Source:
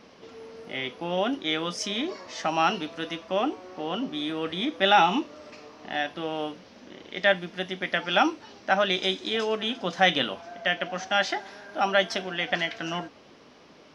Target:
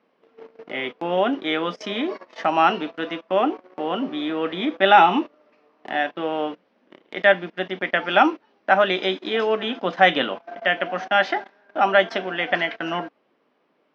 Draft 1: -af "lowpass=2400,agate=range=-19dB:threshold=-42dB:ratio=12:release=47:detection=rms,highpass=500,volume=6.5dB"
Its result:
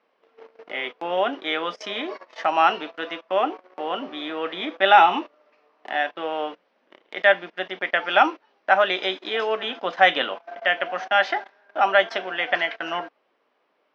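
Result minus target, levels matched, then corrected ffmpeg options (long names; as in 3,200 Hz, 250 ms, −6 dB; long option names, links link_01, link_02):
250 Hz band −7.0 dB
-af "lowpass=2400,agate=range=-19dB:threshold=-42dB:ratio=12:release=47:detection=rms,highpass=230,volume=6.5dB"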